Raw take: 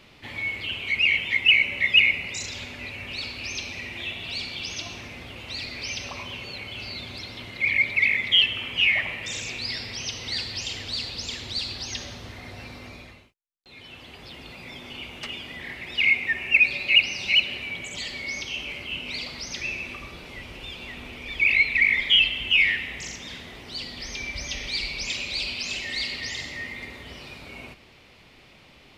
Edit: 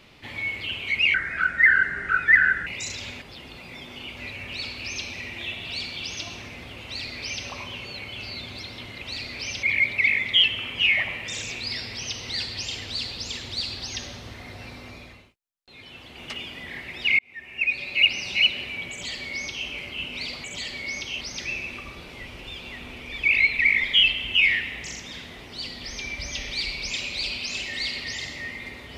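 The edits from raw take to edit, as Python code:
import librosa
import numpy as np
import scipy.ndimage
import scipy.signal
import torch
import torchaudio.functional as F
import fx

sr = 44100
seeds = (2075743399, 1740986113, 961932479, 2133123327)

y = fx.edit(x, sr, fx.speed_span(start_s=1.14, length_s=1.07, speed=0.7),
    fx.duplicate(start_s=5.44, length_s=0.61, to_s=7.61),
    fx.move(start_s=14.16, length_s=0.95, to_s=2.76),
    fx.fade_in_span(start_s=16.12, length_s=0.99),
    fx.duplicate(start_s=17.84, length_s=0.77, to_s=19.37), tone=tone)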